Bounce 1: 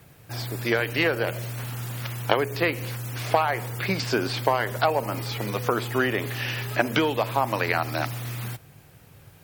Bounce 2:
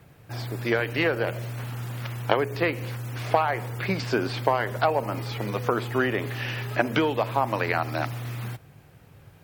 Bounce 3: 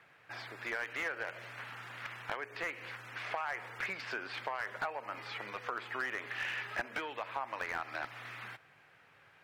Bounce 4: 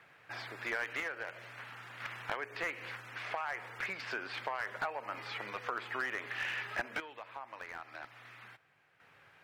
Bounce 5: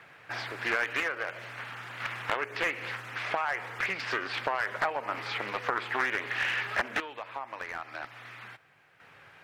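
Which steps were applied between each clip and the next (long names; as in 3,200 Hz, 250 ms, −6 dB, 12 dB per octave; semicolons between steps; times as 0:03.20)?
high-shelf EQ 3,800 Hz −9 dB
downward compressor 2.5 to 1, threshold −32 dBFS, peak gain reduction 11.5 dB; resonant band-pass 1,800 Hz, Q 1.3; slew-rate limiting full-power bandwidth 38 Hz; level +2 dB
sample-and-hold tremolo 1 Hz, depth 65%; level +1.5 dB
highs frequency-modulated by the lows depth 0.61 ms; level +7.5 dB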